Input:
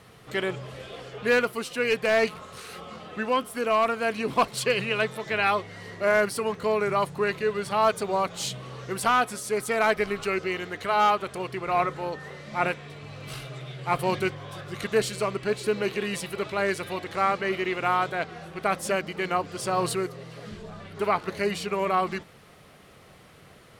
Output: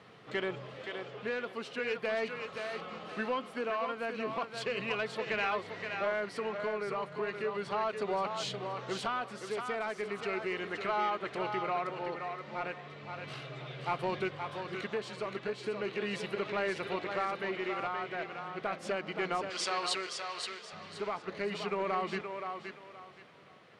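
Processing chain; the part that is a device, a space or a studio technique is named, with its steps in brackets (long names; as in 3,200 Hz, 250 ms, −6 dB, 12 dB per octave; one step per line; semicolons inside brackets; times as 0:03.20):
AM radio (band-pass filter 160–4,100 Hz; downward compressor 5 to 1, threshold −25 dBFS, peak gain reduction 8.5 dB; soft clipping −18.5 dBFS, distortion −21 dB; amplitude tremolo 0.36 Hz, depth 38%)
0:19.50–0:20.73: meter weighting curve ITU-R 468
feedback echo with a high-pass in the loop 523 ms, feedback 27%, high-pass 340 Hz, level −5.5 dB
level −2.5 dB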